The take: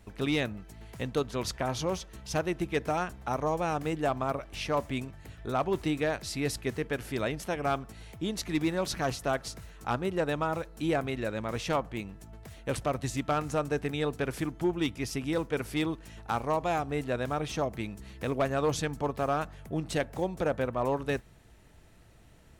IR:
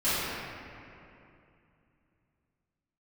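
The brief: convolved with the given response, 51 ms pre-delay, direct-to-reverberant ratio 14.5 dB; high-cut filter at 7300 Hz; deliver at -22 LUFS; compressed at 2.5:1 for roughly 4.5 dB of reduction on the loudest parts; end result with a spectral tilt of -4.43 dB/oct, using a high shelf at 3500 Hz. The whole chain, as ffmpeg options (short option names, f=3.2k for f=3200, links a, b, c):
-filter_complex "[0:a]lowpass=7.3k,highshelf=f=3.5k:g=8,acompressor=threshold=-30dB:ratio=2.5,asplit=2[a][b];[1:a]atrim=start_sample=2205,adelay=51[c];[b][c]afir=irnorm=-1:irlink=0,volume=-28.5dB[d];[a][d]amix=inputs=2:normalize=0,volume=12.5dB"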